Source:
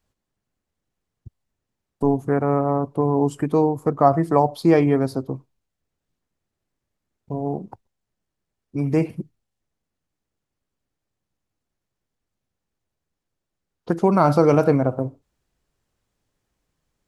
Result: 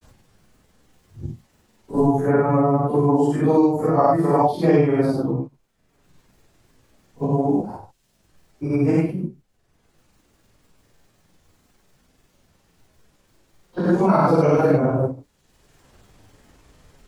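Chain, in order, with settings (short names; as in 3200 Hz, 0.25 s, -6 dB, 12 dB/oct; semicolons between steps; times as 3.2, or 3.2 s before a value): phase scrambler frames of 0.2 s; grains, spray 34 ms, pitch spread up and down by 0 st; three-band squash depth 70%; gain +3.5 dB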